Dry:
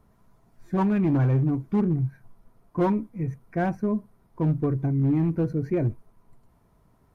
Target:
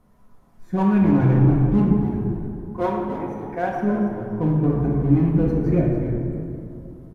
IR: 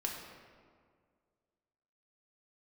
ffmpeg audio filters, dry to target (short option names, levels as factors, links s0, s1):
-filter_complex "[0:a]asettb=1/sr,asplit=3[s0][s1][s2];[s0]atrim=end=1.924[s3];[s1]atrim=start=1.92:end=3.72,asetpts=PTS-STARTPTS,afade=t=in:d=0.004:c=qsin,afade=t=out:st=1.796:d=0.004:c=qsin,highpass=360[s4];[s2]atrim=start=3.716[s5];[s3][s4]acrossfade=d=0.004:c1=hsin:c2=qsin[s6];[s6][s5]acrossfade=d=0.004:c1=qsin:c2=hsin,asplit=4[s7][s8][s9][s10];[s8]adelay=284,afreqshift=-94,volume=0.316[s11];[s9]adelay=568,afreqshift=-188,volume=0.0977[s12];[s10]adelay=852,afreqshift=-282,volume=0.0305[s13];[s7][s11][s12][s13]amix=inputs=4:normalize=0[s14];[1:a]atrim=start_sample=2205,asetrate=29547,aresample=44100[s15];[s14][s15]afir=irnorm=-1:irlink=0"